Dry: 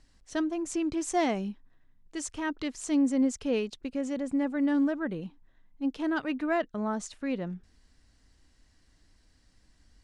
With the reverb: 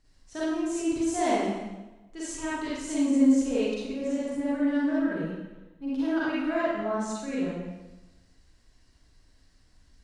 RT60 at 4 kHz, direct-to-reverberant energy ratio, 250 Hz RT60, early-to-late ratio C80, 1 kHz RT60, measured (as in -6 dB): 0.95 s, -9.0 dB, 1.1 s, 0.5 dB, 1.1 s